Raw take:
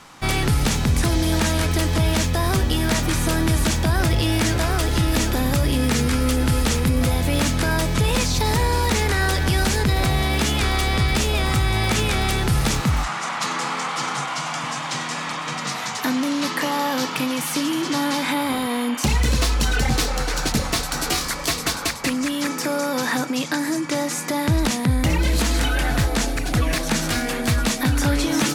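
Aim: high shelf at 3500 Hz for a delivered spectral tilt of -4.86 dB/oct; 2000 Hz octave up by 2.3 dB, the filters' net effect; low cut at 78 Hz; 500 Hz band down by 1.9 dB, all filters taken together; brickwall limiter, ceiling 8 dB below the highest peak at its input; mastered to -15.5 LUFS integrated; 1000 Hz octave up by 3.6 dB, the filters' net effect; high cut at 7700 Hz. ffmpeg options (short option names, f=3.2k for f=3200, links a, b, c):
-af "highpass=78,lowpass=7.7k,equalizer=f=500:t=o:g=-4,equalizer=f=1k:t=o:g=5.5,equalizer=f=2k:t=o:g=3.5,highshelf=f=3.5k:g=-7.5,volume=9dB,alimiter=limit=-6.5dB:level=0:latency=1"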